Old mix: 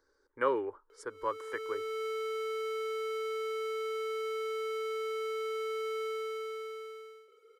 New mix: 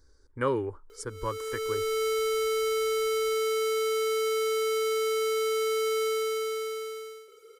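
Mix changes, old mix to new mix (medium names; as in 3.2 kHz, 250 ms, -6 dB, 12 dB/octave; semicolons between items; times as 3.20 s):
background +6.0 dB; master: remove three-band isolator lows -23 dB, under 330 Hz, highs -13 dB, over 3.1 kHz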